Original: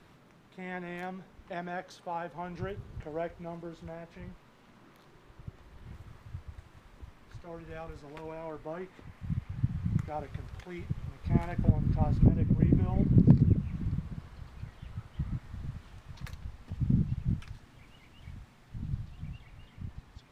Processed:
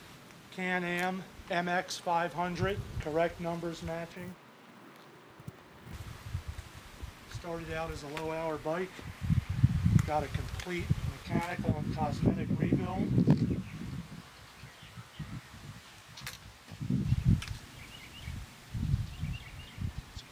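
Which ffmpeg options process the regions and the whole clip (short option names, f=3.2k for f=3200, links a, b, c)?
-filter_complex "[0:a]asettb=1/sr,asplit=3[a][b][c];[a]atrim=end=4.124[d];[b]atrim=start=4.12:end=5.93,asetpts=PTS-STARTPTS,afade=t=in:d=0.004:c=qsin,afade=t=out:st=1.806:d=0.004:c=qsin,highpass=160,highshelf=f=3.1k:g=-12,acrusher=bits=7:mode=log:mix=0:aa=0.000001[e];[c]atrim=start=5.926[f];[d][e]acrossfade=d=0.004:c1=hsin:c2=qsin[g];[g][f]acrossfade=d=0.004:c1=qsin:c2=hsin,asettb=1/sr,asplit=3[h][i][j];[h]atrim=end=11.234[k];[i]atrim=start=11.23:end=17.05,asetpts=PTS-STARTPTS,afade=t=in:d=0.004:c=qsin,afade=t=out:st=5.816:d=0.004:c=qsin,highpass=f=330:p=1,flanger=delay=15:depth=5:speed=2.6[l];[j]atrim=start=17.046[m];[k][l]acrossfade=d=0.004:c1=hsin:c2=qsin[n];[n][m]acrossfade=d=0.004:c1=qsin:c2=hsin,highpass=43,highshelf=f=2.3k:g=11,volume=5dB"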